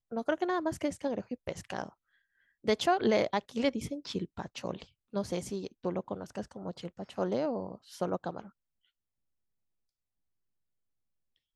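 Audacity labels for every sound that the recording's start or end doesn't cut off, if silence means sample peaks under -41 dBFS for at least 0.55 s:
2.660000	8.450000	sound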